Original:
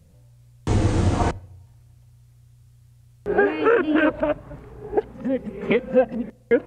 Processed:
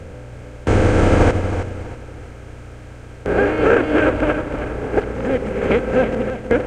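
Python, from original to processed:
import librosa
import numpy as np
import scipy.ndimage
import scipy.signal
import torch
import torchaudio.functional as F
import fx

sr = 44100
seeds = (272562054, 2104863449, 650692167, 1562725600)

p1 = fx.bin_compress(x, sr, power=0.4)
p2 = fx.low_shelf(p1, sr, hz=91.0, db=6.5)
p3 = p2 + fx.echo_feedback(p2, sr, ms=320, feedback_pct=43, wet_db=-7.0, dry=0)
p4 = fx.upward_expand(p3, sr, threshold_db=-24.0, expansion=1.5)
y = p4 * librosa.db_to_amplitude(-1.0)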